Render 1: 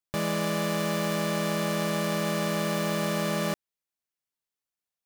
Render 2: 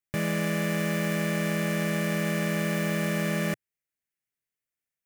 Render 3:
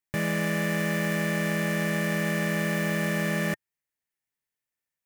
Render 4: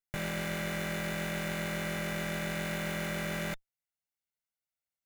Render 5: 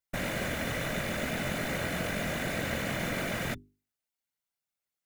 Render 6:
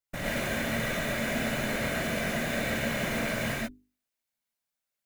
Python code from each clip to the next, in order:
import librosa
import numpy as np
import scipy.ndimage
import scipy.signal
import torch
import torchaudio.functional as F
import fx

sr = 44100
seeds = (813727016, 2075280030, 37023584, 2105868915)

y1 = fx.graphic_eq(x, sr, hz=(125, 1000, 2000, 4000), db=(5, -9, 8, -8))
y2 = fx.small_body(y1, sr, hz=(900.0, 1800.0), ring_ms=30, db=7)
y3 = fx.lower_of_two(y2, sr, delay_ms=1.4)
y3 = y3 * 10.0 ** (-5.5 / 20.0)
y4 = fx.whisperise(y3, sr, seeds[0])
y4 = fx.hum_notches(y4, sr, base_hz=50, count=8)
y4 = y4 * 10.0 ** (2.5 / 20.0)
y5 = fx.rev_gated(y4, sr, seeds[1], gate_ms=150, shape='rising', drr_db=-4.0)
y5 = y5 * 10.0 ** (-3.0 / 20.0)